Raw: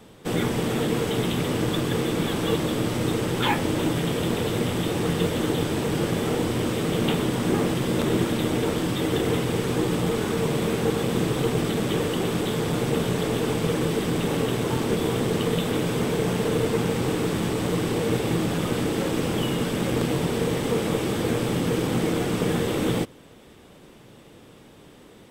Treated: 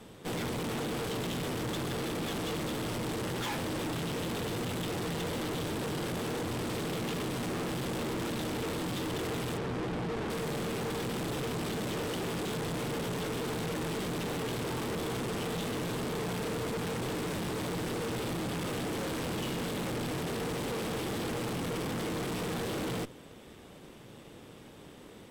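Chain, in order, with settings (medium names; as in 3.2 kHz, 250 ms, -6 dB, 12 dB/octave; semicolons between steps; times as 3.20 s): 9.57–10.30 s: low-pass 1.6 kHz 6 dB/octave; valve stage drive 35 dB, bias 0.7; trim +2 dB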